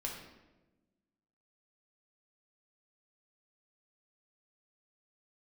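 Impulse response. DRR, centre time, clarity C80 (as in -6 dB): -1.5 dB, 43 ms, 6.5 dB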